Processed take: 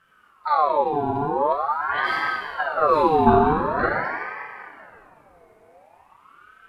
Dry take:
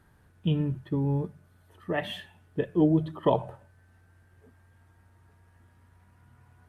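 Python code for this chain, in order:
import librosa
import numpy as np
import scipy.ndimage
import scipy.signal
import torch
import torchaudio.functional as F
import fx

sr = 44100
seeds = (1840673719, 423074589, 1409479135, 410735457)

y = fx.reverse_delay(x, sr, ms=509, wet_db=-1.5)
y = scipy.signal.sosfilt(scipy.signal.butter(2, 100.0, 'highpass', fs=sr, output='sos'), y)
y = fx.low_shelf(y, sr, hz=170.0, db=11.0)
y = fx.rev_plate(y, sr, seeds[0], rt60_s=2.4, hf_ratio=0.75, predelay_ms=0, drr_db=-4.5)
y = fx.ring_lfo(y, sr, carrier_hz=990.0, swing_pct=45, hz=0.45)
y = y * librosa.db_to_amplitude(-1.0)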